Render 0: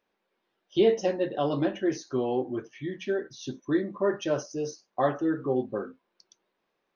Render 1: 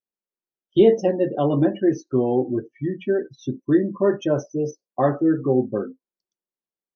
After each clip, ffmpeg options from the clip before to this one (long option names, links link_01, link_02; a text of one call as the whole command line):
ffmpeg -i in.wav -af "afftdn=noise_reduction=29:noise_floor=-38,lowshelf=frequency=460:gain=10,volume=1.5dB" out.wav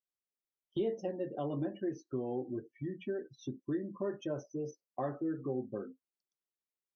ffmpeg -i in.wav -af "acompressor=threshold=-31dB:ratio=2,volume=-8.5dB" out.wav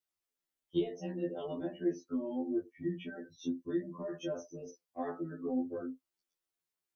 ffmpeg -i in.wav -filter_complex "[0:a]acrossover=split=310|1800[link_01][link_02][link_03];[link_02]alimiter=level_in=13.5dB:limit=-24dB:level=0:latency=1:release=13,volume=-13.5dB[link_04];[link_01][link_04][link_03]amix=inputs=3:normalize=0,afftfilt=real='re*2*eq(mod(b,4),0)':imag='im*2*eq(mod(b,4),0)':win_size=2048:overlap=0.75,volume=6dB" out.wav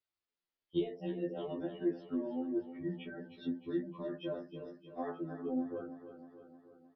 ffmpeg -i in.wav -af "aecho=1:1:310|620|930|1240|1550|1860|2170:0.266|0.16|0.0958|0.0575|0.0345|0.0207|0.0124,aresample=11025,aresample=44100,volume=-1.5dB" out.wav